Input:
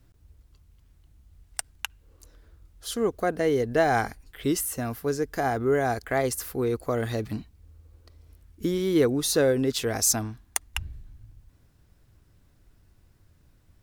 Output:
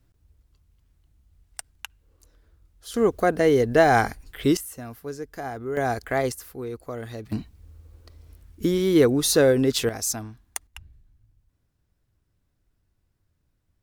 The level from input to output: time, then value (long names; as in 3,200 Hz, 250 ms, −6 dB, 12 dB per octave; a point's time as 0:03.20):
−5 dB
from 0:02.94 +5 dB
from 0:04.57 −7 dB
from 0:05.77 +1 dB
from 0:06.32 −7 dB
from 0:07.32 +4 dB
from 0:09.89 −4.5 dB
from 0:10.67 −12 dB